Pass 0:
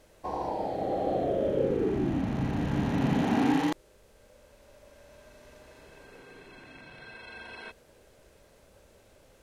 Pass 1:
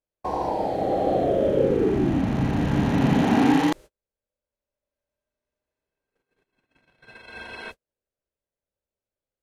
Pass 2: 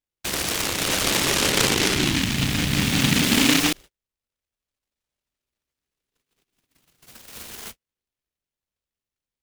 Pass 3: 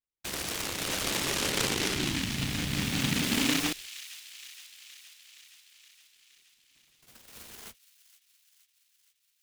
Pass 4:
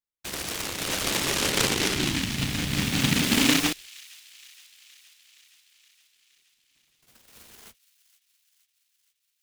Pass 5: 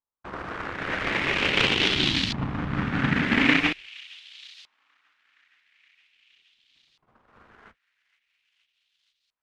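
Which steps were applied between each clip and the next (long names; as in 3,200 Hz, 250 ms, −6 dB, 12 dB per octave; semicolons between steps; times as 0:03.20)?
noise gate −45 dBFS, range −41 dB; level +6.5 dB
short delay modulated by noise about 2,700 Hz, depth 0.47 ms
delay with a high-pass on its return 469 ms, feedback 66%, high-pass 2,500 Hz, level −13.5 dB; level −9 dB
expander for the loud parts 1.5 to 1, over −44 dBFS; level +7 dB
auto-filter low-pass saw up 0.43 Hz 1,000–4,300 Hz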